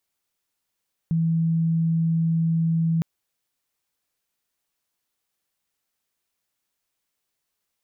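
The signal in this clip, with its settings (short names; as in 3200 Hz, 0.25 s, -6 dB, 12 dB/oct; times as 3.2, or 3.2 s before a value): tone sine 164 Hz -18.5 dBFS 1.91 s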